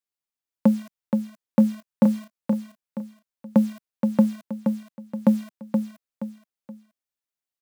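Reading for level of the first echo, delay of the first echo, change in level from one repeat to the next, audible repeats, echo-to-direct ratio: −5.5 dB, 474 ms, −9.0 dB, 3, −5.0 dB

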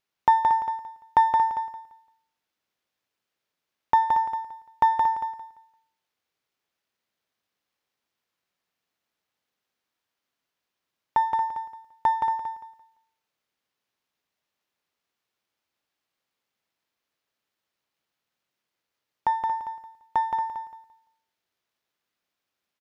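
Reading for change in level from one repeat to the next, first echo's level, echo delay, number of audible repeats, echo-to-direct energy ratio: −11.5 dB, −4.5 dB, 171 ms, 3, −4.0 dB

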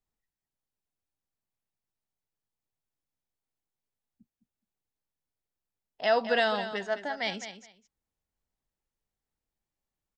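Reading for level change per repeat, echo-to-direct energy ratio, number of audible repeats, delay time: −15.0 dB, −11.0 dB, 2, 210 ms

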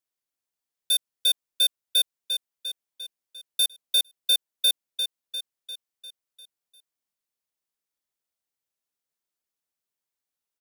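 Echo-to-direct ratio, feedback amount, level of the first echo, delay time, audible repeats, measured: −7.5 dB, 55%, −9.0 dB, 349 ms, 6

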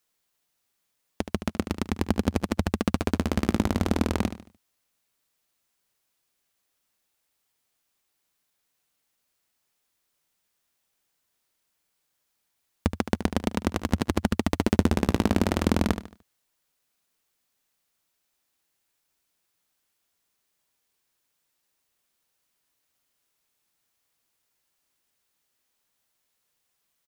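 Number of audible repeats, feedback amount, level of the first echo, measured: 3, 36%, −11.0 dB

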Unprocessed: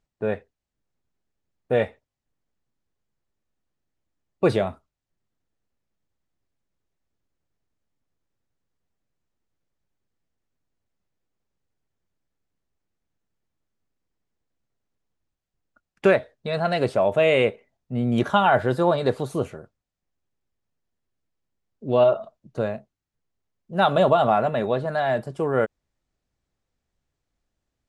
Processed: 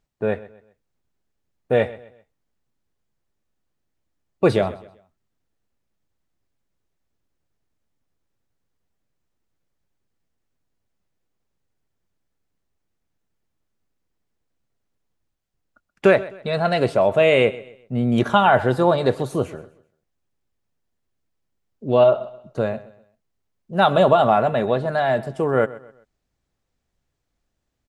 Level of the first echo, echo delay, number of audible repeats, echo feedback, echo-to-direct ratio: −18.5 dB, 129 ms, 2, 35%, −18.0 dB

